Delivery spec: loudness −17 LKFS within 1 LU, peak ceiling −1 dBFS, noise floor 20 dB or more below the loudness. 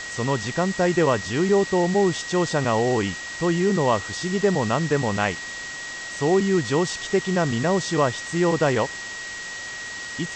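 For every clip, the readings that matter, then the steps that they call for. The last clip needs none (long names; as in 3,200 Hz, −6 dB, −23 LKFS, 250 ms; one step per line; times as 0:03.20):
interfering tone 1,900 Hz; level of the tone −33 dBFS; background noise floor −34 dBFS; target noise floor −43 dBFS; integrated loudness −23.0 LKFS; sample peak −7.5 dBFS; target loudness −17.0 LKFS
→ notch filter 1,900 Hz, Q 30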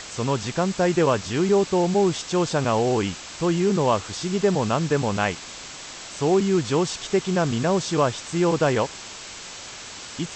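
interfering tone none found; background noise floor −39 dBFS; target noise floor −43 dBFS
→ noise reduction from a noise print 6 dB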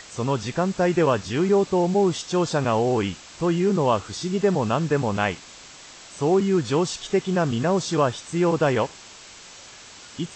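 background noise floor −45 dBFS; integrated loudness −23.0 LKFS; sample peak −8.0 dBFS; target loudness −17.0 LKFS
→ level +6 dB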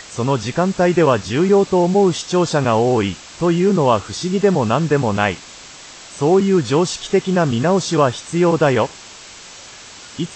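integrated loudness −17.0 LKFS; sample peak −2.0 dBFS; background noise floor −39 dBFS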